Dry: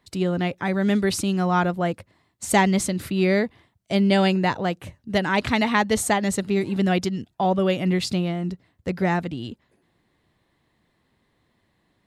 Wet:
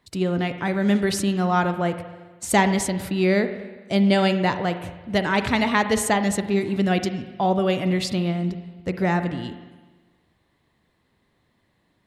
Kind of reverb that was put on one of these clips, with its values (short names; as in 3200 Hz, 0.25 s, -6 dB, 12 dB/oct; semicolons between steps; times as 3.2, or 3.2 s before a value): spring tank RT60 1.3 s, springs 40/54 ms, chirp 35 ms, DRR 9 dB